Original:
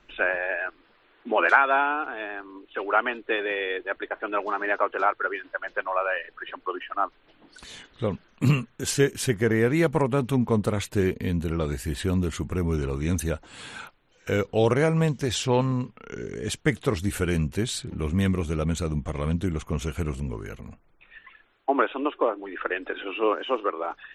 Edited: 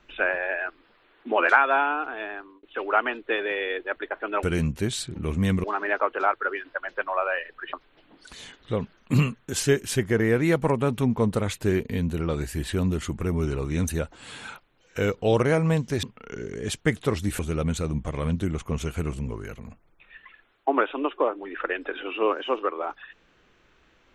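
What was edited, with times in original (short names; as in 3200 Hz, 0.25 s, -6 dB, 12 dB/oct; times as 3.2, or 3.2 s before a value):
2.24–2.63 fade out equal-power
6.52–7.04 cut
15.34–15.83 cut
17.19–18.4 move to 4.43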